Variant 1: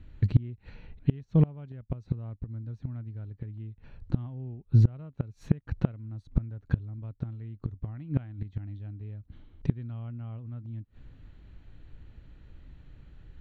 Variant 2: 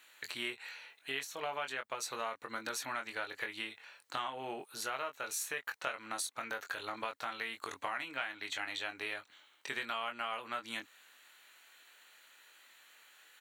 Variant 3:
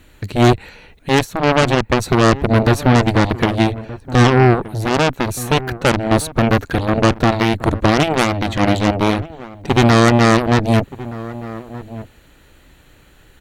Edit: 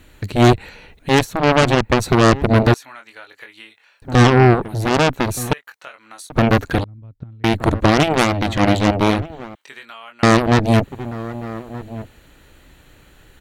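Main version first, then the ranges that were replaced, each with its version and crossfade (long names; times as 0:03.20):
3
0:02.74–0:04.02: punch in from 2
0:05.53–0:06.30: punch in from 2
0:06.84–0:07.44: punch in from 1
0:09.55–0:10.23: punch in from 2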